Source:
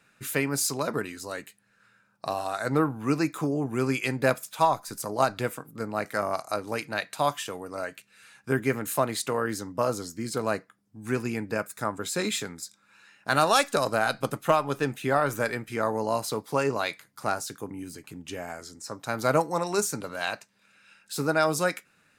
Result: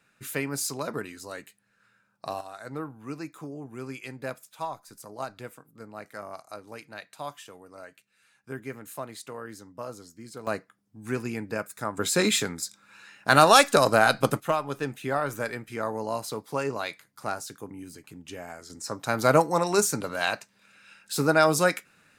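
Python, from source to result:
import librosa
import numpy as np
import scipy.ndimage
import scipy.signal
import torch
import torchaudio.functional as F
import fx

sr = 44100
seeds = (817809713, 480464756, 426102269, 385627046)

y = fx.gain(x, sr, db=fx.steps((0.0, -3.5), (2.41, -11.5), (10.47, -2.0), (11.97, 5.5), (14.4, -3.5), (18.7, 3.5)))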